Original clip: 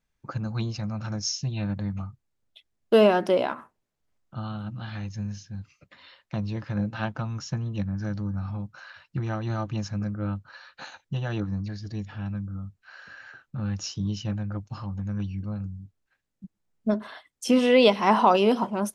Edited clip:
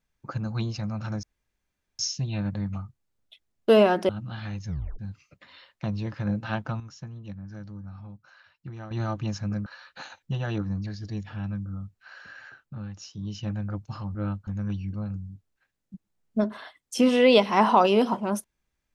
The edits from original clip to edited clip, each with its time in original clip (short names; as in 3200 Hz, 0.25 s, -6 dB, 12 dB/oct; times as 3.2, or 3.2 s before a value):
1.23 insert room tone 0.76 s
3.33–4.59 cut
5.17 tape stop 0.32 s
7.3–9.41 gain -10 dB
10.16–10.48 move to 14.97
13.25–14.42 dip -9.5 dB, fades 0.48 s